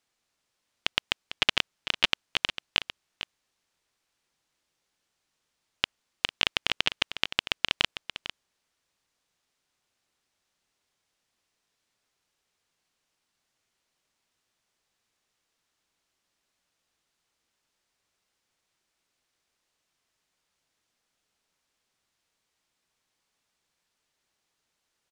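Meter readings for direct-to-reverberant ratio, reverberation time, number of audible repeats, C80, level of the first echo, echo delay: none, none, 1, none, -12.0 dB, 0.45 s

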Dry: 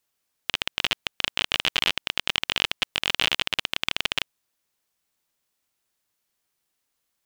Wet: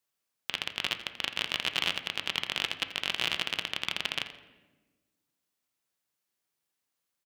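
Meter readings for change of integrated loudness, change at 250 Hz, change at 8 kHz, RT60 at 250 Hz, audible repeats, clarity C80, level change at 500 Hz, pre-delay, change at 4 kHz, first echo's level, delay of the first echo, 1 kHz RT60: -6.0 dB, -5.0 dB, -6.5 dB, 1.8 s, 1, 11.5 dB, -5.5 dB, 5 ms, -6.0 dB, -14.5 dB, 85 ms, 1.1 s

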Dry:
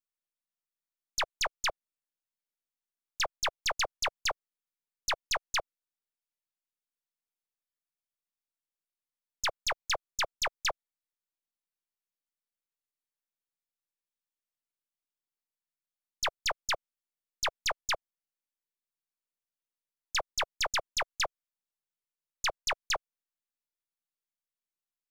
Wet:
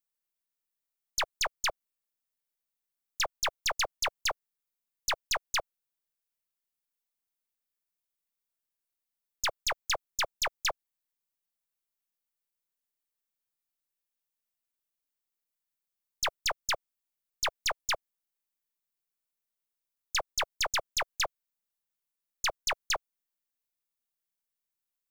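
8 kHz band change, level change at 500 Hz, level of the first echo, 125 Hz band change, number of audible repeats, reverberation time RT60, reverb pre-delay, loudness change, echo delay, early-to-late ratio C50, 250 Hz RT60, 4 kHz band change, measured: +2.0 dB, 0.0 dB, none, 0.0 dB, none, none, none, +1.0 dB, none, none, none, +1.0 dB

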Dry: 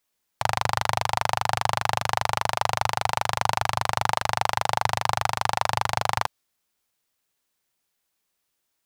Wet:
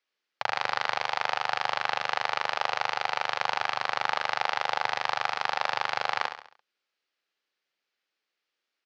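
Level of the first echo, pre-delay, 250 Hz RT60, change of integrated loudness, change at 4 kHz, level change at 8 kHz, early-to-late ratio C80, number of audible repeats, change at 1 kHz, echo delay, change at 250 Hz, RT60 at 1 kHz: -8.5 dB, none, none, -3.5 dB, -2.0 dB, -13.0 dB, none, 4, -4.5 dB, 68 ms, -12.0 dB, none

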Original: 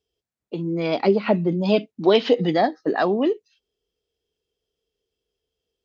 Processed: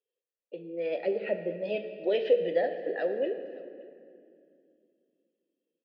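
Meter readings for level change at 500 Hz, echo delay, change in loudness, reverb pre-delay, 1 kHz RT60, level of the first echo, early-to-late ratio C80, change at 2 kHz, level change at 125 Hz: -7.0 dB, 0.571 s, -9.0 dB, 5 ms, 2.1 s, -23.0 dB, 9.5 dB, -9.0 dB, -22.0 dB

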